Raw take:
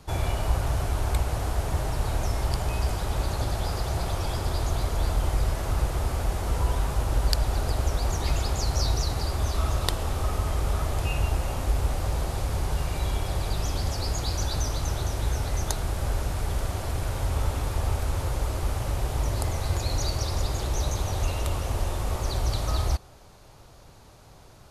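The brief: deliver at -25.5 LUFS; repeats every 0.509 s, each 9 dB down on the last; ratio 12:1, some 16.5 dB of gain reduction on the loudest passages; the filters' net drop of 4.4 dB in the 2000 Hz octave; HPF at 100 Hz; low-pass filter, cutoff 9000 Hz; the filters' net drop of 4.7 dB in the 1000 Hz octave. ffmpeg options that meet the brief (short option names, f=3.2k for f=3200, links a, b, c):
-af "highpass=100,lowpass=9k,equalizer=f=1k:t=o:g=-5.5,equalizer=f=2k:t=o:g=-4,acompressor=threshold=-41dB:ratio=12,aecho=1:1:509|1018|1527|2036:0.355|0.124|0.0435|0.0152,volume=19.5dB"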